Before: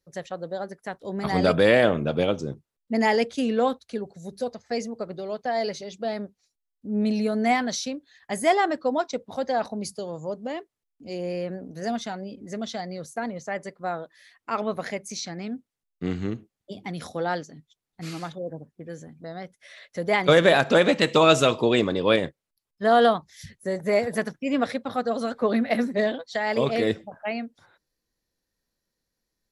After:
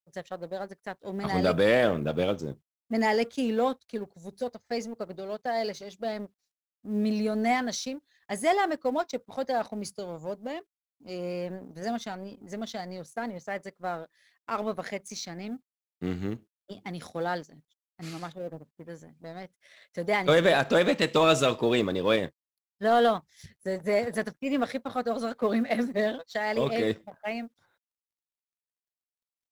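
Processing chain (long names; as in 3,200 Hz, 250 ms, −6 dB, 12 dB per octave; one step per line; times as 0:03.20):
mu-law and A-law mismatch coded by A
in parallel at −6 dB: hard clipping −19 dBFS, distortion −9 dB
on the sum: level −6 dB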